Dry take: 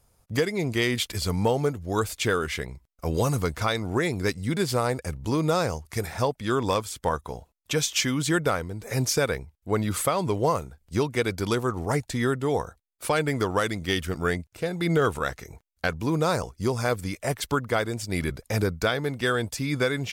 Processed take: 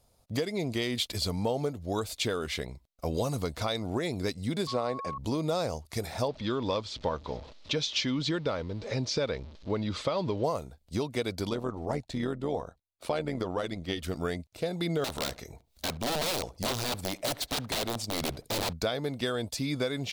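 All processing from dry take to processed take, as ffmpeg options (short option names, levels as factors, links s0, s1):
-filter_complex "[0:a]asettb=1/sr,asplit=3[s0][s1][s2];[s0]atrim=end=4.674[s3];[s1]atrim=start=4.67:end=5.18,asetpts=PTS-STARTPTS,afade=t=in:d=0.004:c=qsin,afade=t=out:st=0.506:d=0.004:c=qsin,highpass=150,lowpass=4400,aeval=exprs='val(0)+0.0316*sin(2*PI*1100*n/s)':c=same[s4];[s2]atrim=start=5.176[s5];[s3][s4]acrossfade=d=0.004:c1=hsin:c2=qsin[s6];[s6][s5]acrossfade=d=0.004:c1=qsin:c2=hsin,asettb=1/sr,asplit=3[s7][s8][s9];[s7]atrim=end=6.284[s10];[s8]atrim=start=6.28:end=10.44,asetpts=PTS-STARTPTS,afade=t=in:d=0.004:c=qsin,afade=t=out:st=4.156:d=0.004:c=qsin,aeval=exprs='val(0)+0.5*0.01*sgn(val(0))':c=same,lowpass=f=5300:w=0.5412,lowpass=f=5300:w=1.3066,bandreject=f=720:w=7[s11];[s9]atrim=start=10.436[s12];[s10][s11]acrossfade=d=0.004:c1=hsin:c2=qsin[s13];[s13][s12]acrossfade=d=0.004:c1=qsin:c2=hsin,asettb=1/sr,asplit=3[s14][s15][s16];[s14]atrim=end=11.494[s17];[s15]atrim=start=11.49:end=14.03,asetpts=PTS-STARTPTS,afade=t=in:d=0.004:c=qsin,afade=t=out:st=2.536:d=0.004:c=qsin,lowpass=f=3200:p=1,tremolo=f=86:d=0.621[s18];[s16]atrim=start=14.026[s19];[s17][s18]acrossfade=d=0.004:c1=hsin:c2=qsin[s20];[s20][s19]acrossfade=d=0.004:c1=qsin:c2=hsin,asettb=1/sr,asplit=3[s21][s22][s23];[s21]atrim=end=15.044[s24];[s22]atrim=start=15.04:end=18.73,asetpts=PTS-STARTPTS,afade=t=in:d=0.004:c=qsin,afade=t=out:st=3.686:d=0.004:c=qsin,acompressor=mode=upward:threshold=0.00891:ratio=2.5:attack=3.2:release=140:knee=2.83:detection=peak,aeval=exprs='(mod(12.6*val(0)+1,2)-1)/12.6':c=same,asplit=2[s25][s26];[s26]adelay=70,lowpass=f=1500:p=1,volume=0.106,asplit=2[s27][s28];[s28]adelay=70,lowpass=f=1500:p=1,volume=0.29[s29];[s25][s27][s29]amix=inputs=3:normalize=0,atrim=end_sample=162729[s30];[s23]atrim=start=18.726[s31];[s24][s30]acrossfade=d=0.004:c1=hsin:c2=qsin[s32];[s32][s31]acrossfade=d=0.004:c1=qsin:c2=hsin,acompressor=threshold=0.0501:ratio=3,equalizer=f=250:t=o:w=0.67:g=4,equalizer=f=630:t=o:w=0.67:g=7,equalizer=f=1600:t=o:w=0.67:g=-4,equalizer=f=4000:t=o:w=0.67:g=8,volume=0.631"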